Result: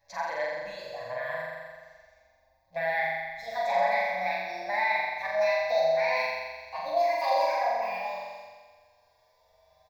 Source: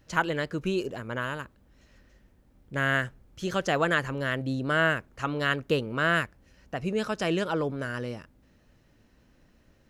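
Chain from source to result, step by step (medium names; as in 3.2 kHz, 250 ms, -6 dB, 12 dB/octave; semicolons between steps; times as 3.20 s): pitch bend over the whole clip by +11 st starting unshifted; resonant low shelf 400 Hz -13 dB, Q 3; peak limiter -15.5 dBFS, peak gain reduction 8 dB; static phaser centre 2 kHz, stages 8; flutter echo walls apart 7.4 m, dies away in 1.5 s; dynamic bell 7.8 kHz, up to -6 dB, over -50 dBFS, Q 0.73; on a send at -10 dB: reverberation, pre-delay 6 ms; on the sum: endless flanger 6.7 ms +0.25 Hz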